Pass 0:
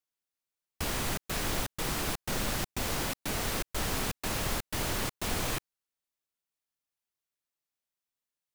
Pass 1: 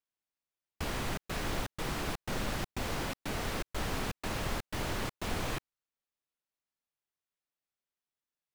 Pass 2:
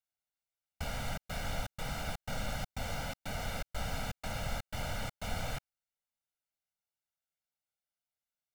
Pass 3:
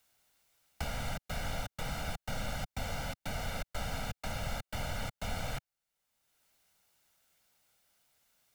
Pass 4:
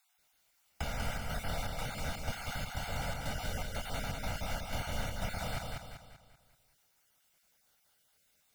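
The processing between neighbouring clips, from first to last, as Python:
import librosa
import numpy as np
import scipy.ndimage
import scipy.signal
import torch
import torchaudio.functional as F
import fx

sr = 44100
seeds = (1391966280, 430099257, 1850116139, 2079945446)

y1 = fx.high_shelf(x, sr, hz=5400.0, db=-10.5)
y1 = y1 * librosa.db_to_amplitude(-1.5)
y2 = y1 + 0.98 * np.pad(y1, (int(1.4 * sr / 1000.0), 0))[:len(y1)]
y2 = y2 * librosa.db_to_amplitude(-6.0)
y3 = fx.band_squash(y2, sr, depth_pct=70)
y4 = fx.spec_dropout(y3, sr, seeds[0], share_pct=27)
y4 = fx.echo_feedback(y4, sr, ms=193, feedback_pct=44, wet_db=-3.0)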